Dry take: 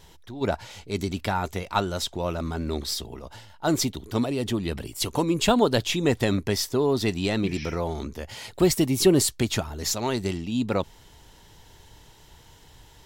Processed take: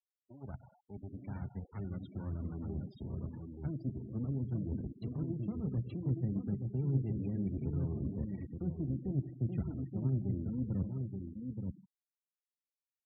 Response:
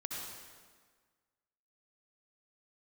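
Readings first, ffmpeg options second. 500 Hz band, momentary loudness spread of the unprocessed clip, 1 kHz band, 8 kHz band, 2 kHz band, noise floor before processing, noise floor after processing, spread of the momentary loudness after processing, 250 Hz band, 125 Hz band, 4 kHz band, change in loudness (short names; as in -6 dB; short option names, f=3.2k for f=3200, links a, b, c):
-21.5 dB, 12 LU, under -25 dB, under -40 dB, under -30 dB, -52 dBFS, under -85 dBFS, 10 LU, -11.5 dB, -4.5 dB, under -40 dB, -12.5 dB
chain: -filter_complex "[0:a]areverse,acompressor=threshold=-30dB:ratio=12,areverse,acrossover=split=210 2400:gain=0.158 1 0.251[a][b][c];[a][b][c]amix=inputs=3:normalize=0,aeval=exprs='max(val(0),0)':c=same,agate=range=-7dB:threshold=-50dB:ratio=16:detection=peak,asplit=2[d][e];[1:a]atrim=start_sample=2205,afade=t=out:st=0.29:d=0.01,atrim=end_sample=13230,lowshelf=f=320:g=-6.5[f];[e][f]afir=irnorm=-1:irlink=0,volume=-3.5dB[g];[d][g]amix=inputs=2:normalize=0,acrossover=split=160[h][i];[i]acompressor=threshold=-55dB:ratio=2.5[j];[h][j]amix=inputs=2:normalize=0,highpass=110,lowpass=4.9k,asplit=2[k][l];[l]adelay=15,volume=-11dB[m];[k][m]amix=inputs=2:normalize=0,aecho=1:1:876:0.562,afftfilt=real='re*gte(hypot(re,im),0.00562)':imag='im*gte(hypot(re,im),0.00562)':win_size=1024:overlap=0.75,asubboost=boost=11:cutoff=230,volume=-1.5dB"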